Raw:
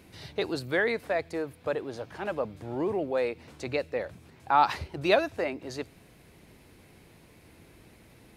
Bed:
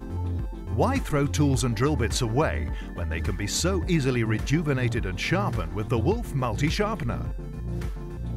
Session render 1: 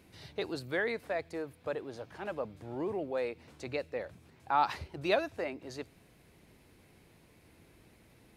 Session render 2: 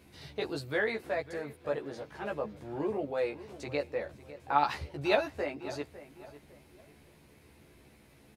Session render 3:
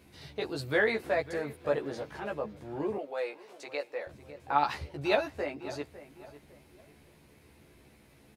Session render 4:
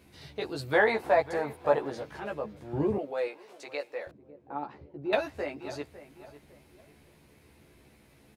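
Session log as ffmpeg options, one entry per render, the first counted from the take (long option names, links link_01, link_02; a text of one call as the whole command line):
ffmpeg -i in.wav -af "volume=-6dB" out.wav
ffmpeg -i in.wav -filter_complex "[0:a]asplit=2[link_01][link_02];[link_02]adelay=14,volume=-2.5dB[link_03];[link_01][link_03]amix=inputs=2:normalize=0,asplit=2[link_04][link_05];[link_05]adelay=552,lowpass=frequency=2500:poles=1,volume=-15dB,asplit=2[link_06][link_07];[link_07]adelay=552,lowpass=frequency=2500:poles=1,volume=0.35,asplit=2[link_08][link_09];[link_09]adelay=552,lowpass=frequency=2500:poles=1,volume=0.35[link_10];[link_04][link_06][link_08][link_10]amix=inputs=4:normalize=0" out.wav
ffmpeg -i in.wav -filter_complex "[0:a]asettb=1/sr,asplit=3[link_01][link_02][link_03];[link_01]atrim=end=2.984[link_04];[link_02]atrim=start=2.98:end=4.07,asetpts=PTS-STARTPTS,afade=type=in:duration=0.004:curve=qsin,afade=type=out:start_time=1.086:duration=0.004:curve=qsin,highpass=500[link_05];[link_03]atrim=start=4.066[link_06];[link_04][link_05]acrossfade=duration=0.004:curve1=hsin:curve2=qsin[link_07];[link_07][link_06]acrossfade=duration=0.004:curve1=qsin:curve2=hsin,asplit=3[link_08][link_09][link_10];[link_08]atrim=end=0.592[link_11];[link_09]atrim=start=0.588:end=2.202,asetpts=PTS-STARTPTS,volume=4dB[link_12];[link_10]atrim=start=2.198[link_13];[link_11][link_12]acrossfade=duration=0.004:curve1=hsin:curve2=hsin[link_14];[link_14][link_13]acrossfade=duration=0.004:curve1=hsin:curve2=hsin" out.wav
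ffmpeg -i in.wav -filter_complex "[0:a]asettb=1/sr,asplit=3[link_01][link_02][link_03];[link_01]atrim=end=0.734[link_04];[link_02]atrim=start=0.73:end=1.9,asetpts=PTS-STARTPTS,afade=type=in:duration=0.004:curve=qsin,afade=type=out:start_time=1.166:duration=0.004:curve=qsin,equalizer=frequency=860:width=1.7:gain=13[link_05];[link_03]atrim=start=1.896[link_06];[link_04][link_05]acrossfade=duration=0.004:curve1=hsin:curve2=qsin[link_07];[link_07][link_06]acrossfade=duration=0.004:curve1=qsin:curve2=hsin,asettb=1/sr,asplit=3[link_08][link_09][link_10];[link_08]atrim=end=2.734[link_11];[link_09]atrim=start=2.73:end=3.28,asetpts=PTS-STARTPTS,afade=type=in:duration=0.004:curve=qsin,afade=type=out:start_time=0.546:duration=0.004:curve=qsin,equalizer=frequency=95:width=0.38:gain=13[link_12];[link_10]atrim=start=3.276[link_13];[link_11][link_12]acrossfade=duration=0.004:curve1=hsin:curve2=qsin[link_14];[link_14][link_13]acrossfade=duration=0.004:curve1=qsin:curve2=hsin,asettb=1/sr,asplit=3[link_15][link_16][link_17];[link_15]atrim=end=4.114[link_18];[link_16]atrim=start=4.11:end=5.13,asetpts=PTS-STARTPTS,afade=type=in:duration=0.004:curve=qsin,afade=type=out:start_time=1.016:duration=0.004:curve=qsin,bandpass=frequency=290:width_type=q:width=1.2[link_19];[link_17]atrim=start=5.126[link_20];[link_18][link_19]acrossfade=duration=0.004:curve1=hsin:curve2=qsin[link_21];[link_21][link_20]acrossfade=duration=0.004:curve1=qsin:curve2=hsin" out.wav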